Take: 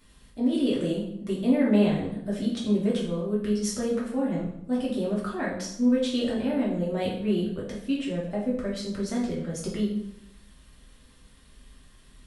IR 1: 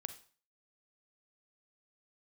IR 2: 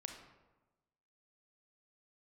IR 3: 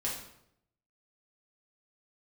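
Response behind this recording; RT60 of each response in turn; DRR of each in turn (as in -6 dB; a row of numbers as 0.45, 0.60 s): 3; 0.40, 1.1, 0.75 s; 9.5, 4.0, -5.5 dB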